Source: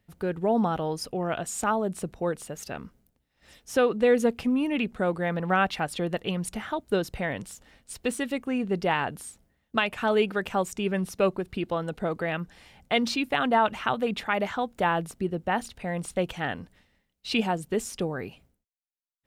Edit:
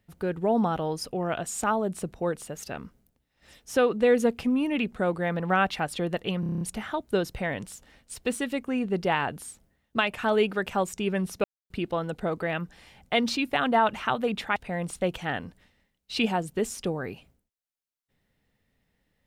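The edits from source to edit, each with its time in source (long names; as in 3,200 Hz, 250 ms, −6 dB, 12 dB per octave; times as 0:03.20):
0:06.40: stutter 0.03 s, 8 plays
0:11.23–0:11.49: silence
0:14.35–0:15.71: remove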